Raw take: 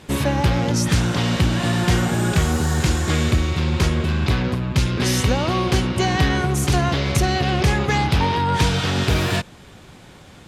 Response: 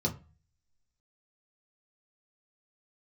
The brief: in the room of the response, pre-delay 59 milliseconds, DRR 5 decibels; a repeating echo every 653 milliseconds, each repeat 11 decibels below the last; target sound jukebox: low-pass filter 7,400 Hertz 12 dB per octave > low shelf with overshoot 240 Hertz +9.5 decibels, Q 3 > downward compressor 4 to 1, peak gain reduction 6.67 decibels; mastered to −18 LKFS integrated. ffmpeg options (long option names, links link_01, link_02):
-filter_complex "[0:a]aecho=1:1:653|1306|1959:0.282|0.0789|0.0221,asplit=2[link_01][link_02];[1:a]atrim=start_sample=2205,adelay=59[link_03];[link_02][link_03]afir=irnorm=-1:irlink=0,volume=-11dB[link_04];[link_01][link_04]amix=inputs=2:normalize=0,lowpass=7400,lowshelf=frequency=240:width_type=q:width=3:gain=9.5,acompressor=threshold=0dB:ratio=4,volume=-12.5dB"